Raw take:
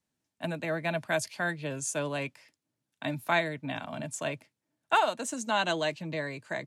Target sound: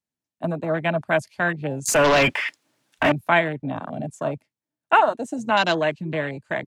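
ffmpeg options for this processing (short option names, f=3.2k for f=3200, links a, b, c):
-filter_complex "[0:a]asettb=1/sr,asplit=3[a][b][c];[a]atrim=end=1.884[d];[b]atrim=start=1.88:end=3.12,asetpts=PTS-STARTPTS,afade=t=in:d=0.004:c=qsin,afade=t=out:st=1.236:d=0.004:c=qsin,asplit=2[e][f];[f]highpass=f=720:p=1,volume=36dB,asoftclip=type=tanh:threshold=-18.5dB[g];[e][g]amix=inputs=2:normalize=0,lowpass=f=4.8k:p=1,volume=-6dB[h];[c]atrim=start=3.116[i];[d][h]acrossfade=d=0.004:c1=hsin:c2=qsin[j];[j][i]acrossfade=d=0.004:c1=qsin:c2=hsin,afwtdn=0.02,volume=8.5dB"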